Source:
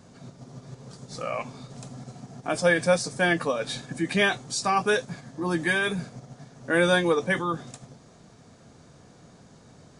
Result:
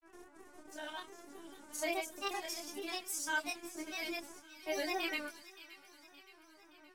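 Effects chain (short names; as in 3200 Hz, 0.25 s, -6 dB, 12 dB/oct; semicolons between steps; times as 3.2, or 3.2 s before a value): notches 50/100/150/200/250 Hz; gate -43 dBFS, range -20 dB; high shelf 3500 Hz +7.5 dB; in parallel at 0 dB: compressor, threshold -36 dBFS, peak gain reduction 19.5 dB; on the sum: rotary speaker horn 7 Hz, later 0.8 Hz, at 1.25; wide varispeed 1.44×; buzz 400 Hz, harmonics 4, -43 dBFS -4 dB/oct; robotiser 337 Hz; grains, pitch spread up and down by 3 st; crossover distortion -51.5 dBFS; chorus voices 2, 0.22 Hz, delay 24 ms, depth 3.7 ms; thin delay 0.57 s, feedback 54%, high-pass 2600 Hz, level -13 dB; gain -7 dB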